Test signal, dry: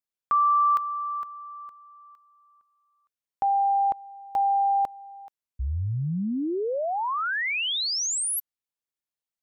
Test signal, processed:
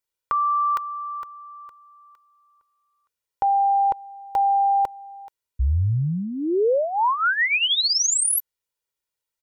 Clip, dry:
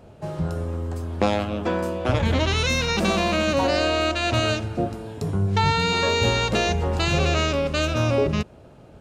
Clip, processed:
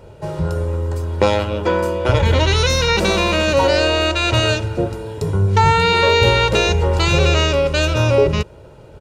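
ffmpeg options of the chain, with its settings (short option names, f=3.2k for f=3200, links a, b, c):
-af "aecho=1:1:2.1:0.57,volume=5dB"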